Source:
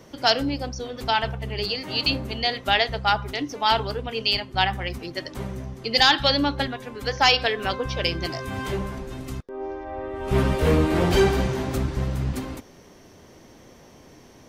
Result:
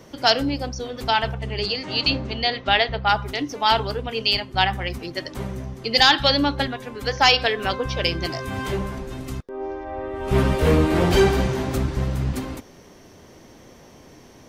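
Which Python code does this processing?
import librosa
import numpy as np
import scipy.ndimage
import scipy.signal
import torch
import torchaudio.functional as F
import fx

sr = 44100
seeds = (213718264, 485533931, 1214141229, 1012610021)

y = fx.lowpass(x, sr, hz=fx.line((1.34, 9900.0), (3.08, 3900.0)), slope=24, at=(1.34, 3.08), fade=0.02)
y = y * 10.0 ** (2.0 / 20.0)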